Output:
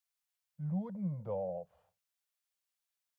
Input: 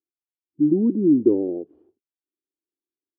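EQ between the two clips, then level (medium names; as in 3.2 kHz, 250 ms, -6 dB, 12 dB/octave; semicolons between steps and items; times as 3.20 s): elliptic band-stop 180–550 Hz, stop band 40 dB; peaking EQ 240 Hz -6 dB 2.5 oct; bass shelf 430 Hz -7 dB; +7.5 dB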